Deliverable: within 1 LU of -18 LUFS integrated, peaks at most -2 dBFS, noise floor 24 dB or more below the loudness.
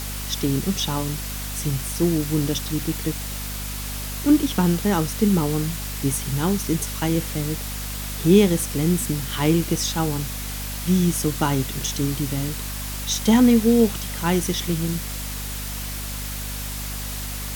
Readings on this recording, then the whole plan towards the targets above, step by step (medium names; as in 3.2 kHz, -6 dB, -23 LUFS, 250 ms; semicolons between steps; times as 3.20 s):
hum 50 Hz; highest harmonic 250 Hz; hum level -30 dBFS; noise floor -30 dBFS; noise floor target -47 dBFS; loudness -23.0 LUFS; peak level -3.5 dBFS; loudness target -18.0 LUFS
-> de-hum 50 Hz, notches 5; noise reduction 17 dB, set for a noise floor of -30 dBFS; trim +5 dB; peak limiter -2 dBFS